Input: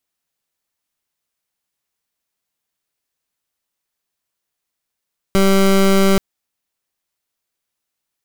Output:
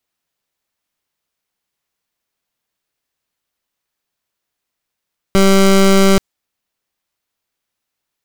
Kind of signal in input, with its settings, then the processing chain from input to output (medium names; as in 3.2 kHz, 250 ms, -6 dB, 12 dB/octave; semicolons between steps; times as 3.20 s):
pulse 194 Hz, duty 22% -12 dBFS 0.83 s
dynamic bell 7.3 kHz, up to +5 dB, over -37 dBFS, Q 0.81; in parallel at -8 dB: sample-rate reducer 15 kHz